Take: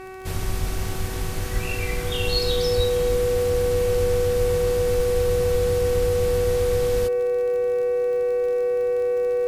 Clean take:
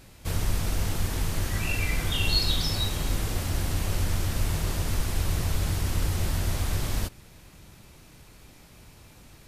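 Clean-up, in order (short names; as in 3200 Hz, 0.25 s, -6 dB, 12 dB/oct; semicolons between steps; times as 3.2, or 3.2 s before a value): de-click; de-hum 377.3 Hz, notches 7; notch 490 Hz, Q 30; de-plosive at 0.6/1.53/2.76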